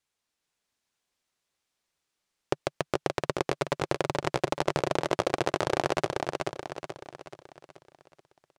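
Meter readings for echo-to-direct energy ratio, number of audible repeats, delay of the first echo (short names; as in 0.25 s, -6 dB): -2.5 dB, 5, 0.43 s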